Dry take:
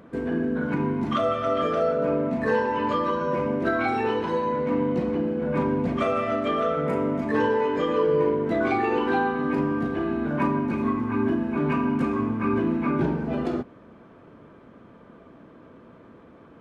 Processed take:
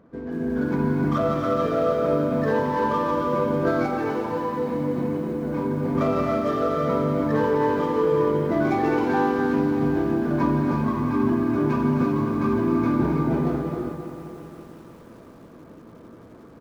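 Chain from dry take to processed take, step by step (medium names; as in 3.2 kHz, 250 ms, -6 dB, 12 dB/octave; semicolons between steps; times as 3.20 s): median filter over 15 samples; bass shelf 72 Hz +4 dB; reverberation, pre-delay 3 ms, DRR 3.5 dB; 3.86–5.95 s: flange 1.3 Hz, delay 4 ms, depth 5 ms, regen -45%; treble shelf 3.2 kHz -9 dB; band-stop 2.8 kHz, Q 22; feedback delay 264 ms, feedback 48%, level -11.5 dB; level rider gain up to 7 dB; bit-crushed delay 178 ms, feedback 80%, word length 7-bit, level -13.5 dB; trim -6 dB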